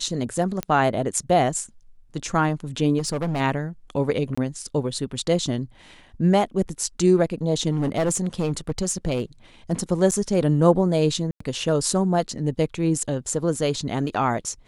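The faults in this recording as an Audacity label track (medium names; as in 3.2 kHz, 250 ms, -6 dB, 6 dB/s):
0.630000	0.630000	pop -11 dBFS
2.980000	3.410000	clipped -21.5 dBFS
4.350000	4.380000	dropout 25 ms
7.710000	9.220000	clipped -18 dBFS
10.110000	10.120000	dropout 7.9 ms
11.310000	11.400000	dropout 94 ms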